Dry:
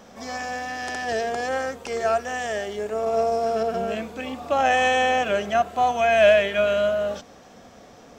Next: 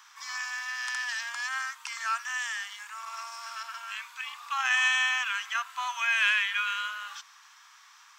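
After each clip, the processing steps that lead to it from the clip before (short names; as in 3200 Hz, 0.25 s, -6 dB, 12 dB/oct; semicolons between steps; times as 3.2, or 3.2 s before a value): steep high-pass 960 Hz 72 dB/oct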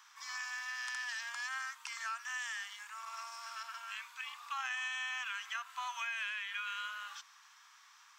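compressor 6:1, threshold -30 dBFS, peak gain reduction 10 dB; gain -6 dB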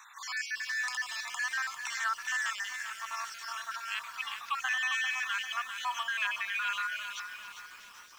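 random spectral dropouts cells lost 42%; lo-fi delay 0.397 s, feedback 55%, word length 10-bit, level -8 dB; gain +8.5 dB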